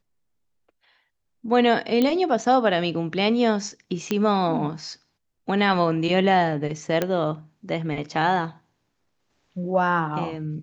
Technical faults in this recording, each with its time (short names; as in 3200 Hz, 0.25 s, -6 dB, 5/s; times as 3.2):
2.02 pop -10 dBFS
4.11 pop -10 dBFS
7.02 pop -9 dBFS